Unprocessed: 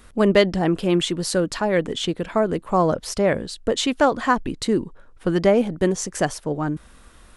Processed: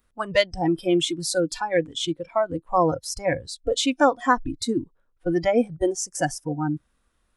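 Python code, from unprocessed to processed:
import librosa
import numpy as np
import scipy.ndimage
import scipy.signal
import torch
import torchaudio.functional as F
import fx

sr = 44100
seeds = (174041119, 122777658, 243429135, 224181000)

y = fx.noise_reduce_blind(x, sr, reduce_db=21)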